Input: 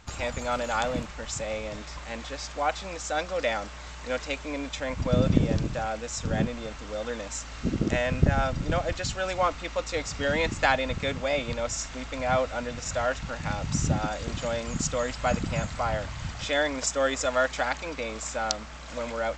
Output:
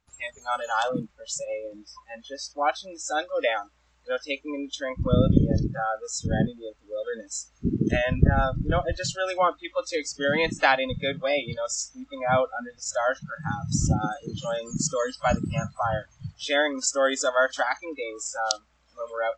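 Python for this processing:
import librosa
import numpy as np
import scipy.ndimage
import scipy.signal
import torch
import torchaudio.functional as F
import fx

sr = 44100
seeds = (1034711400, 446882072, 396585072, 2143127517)

y = fx.dynamic_eq(x, sr, hz=1300.0, q=4.8, threshold_db=-52.0, ratio=4.0, max_db=7, at=(5.7, 6.12))
y = fx.noise_reduce_blind(y, sr, reduce_db=27)
y = y * 10.0 ** (3.0 / 20.0)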